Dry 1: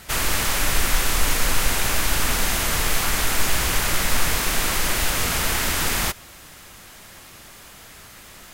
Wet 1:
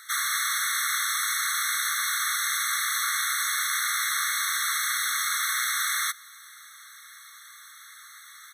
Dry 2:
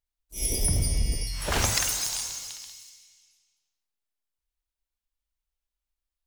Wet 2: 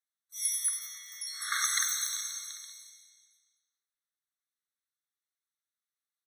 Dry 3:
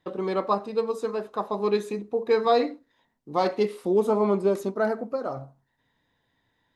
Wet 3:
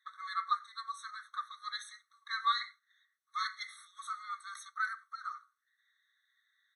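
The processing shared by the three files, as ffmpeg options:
-af "aresample=32000,aresample=44100,afftfilt=real='re*eq(mod(floor(b*sr/1024/1100),2),1)':imag='im*eq(mod(floor(b*sr/1024/1100),2),1)':win_size=1024:overlap=0.75"

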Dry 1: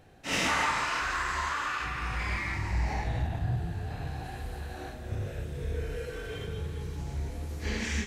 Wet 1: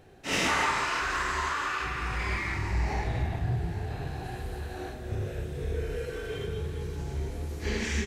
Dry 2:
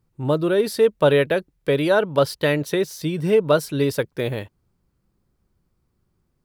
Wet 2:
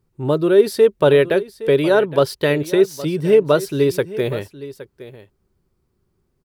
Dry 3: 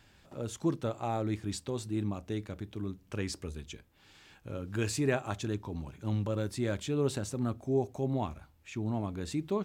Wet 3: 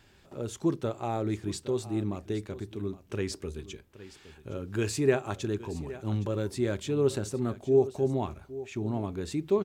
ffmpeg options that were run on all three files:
-af "equalizer=f=390:t=o:w=0.26:g=8.5,aecho=1:1:816:0.158,volume=1dB"

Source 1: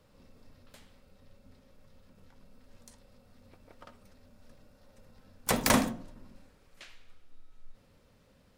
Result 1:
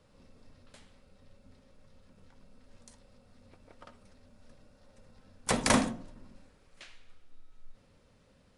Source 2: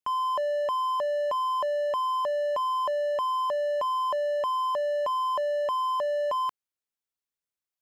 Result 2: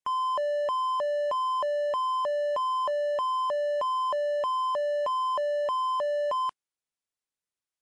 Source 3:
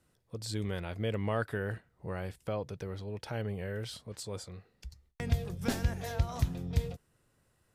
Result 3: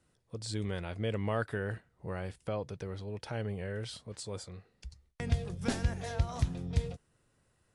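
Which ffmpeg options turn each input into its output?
-ar 24000 -c:a libmp3lame -b:a 80k

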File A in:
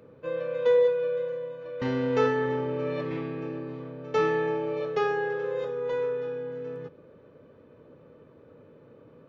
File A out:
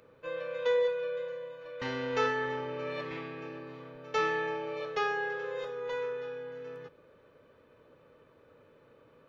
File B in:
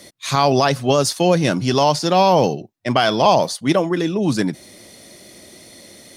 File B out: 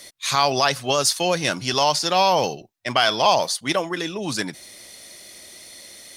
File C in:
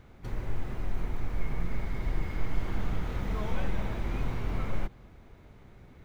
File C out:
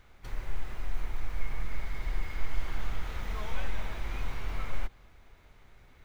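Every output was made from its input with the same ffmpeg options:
-af "equalizer=f=190:w=0.31:g=-14,volume=2.5dB"

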